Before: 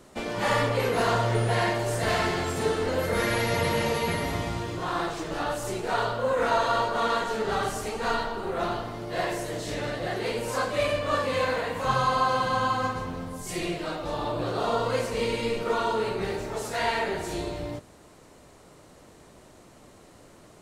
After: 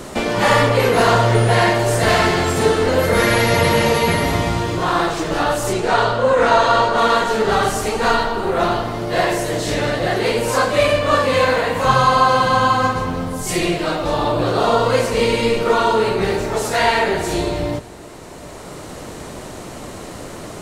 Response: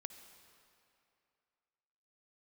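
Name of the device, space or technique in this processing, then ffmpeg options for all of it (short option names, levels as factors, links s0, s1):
ducked reverb: -filter_complex "[0:a]asettb=1/sr,asplit=3[s0][s1][s2];[s0]atrim=end=5.734[s3];[s1]atrim=start=5.73:end=6.98,asetpts=PTS-STARTPTS,afade=t=in:d=0.004:c=qsin,afade=t=out:st=1.246:d=0.004:c=qsin,lowpass=8700[s4];[s2]atrim=start=6.976[s5];[s3][s4]acrossfade=d=0.004:c1=hsin:c2=qsin[s6];[s6][s5]acrossfade=d=0.004:c1=qsin:c2=hsin,asplit=3[s7][s8][s9];[1:a]atrim=start_sample=2205[s10];[s8][s10]afir=irnorm=-1:irlink=0[s11];[s9]apad=whole_len=909329[s12];[s11][s12]sidechaincompress=threshold=0.00631:ratio=8:attack=16:release=1070,volume=4.22[s13];[s7][s13]amix=inputs=2:normalize=0,volume=2.82"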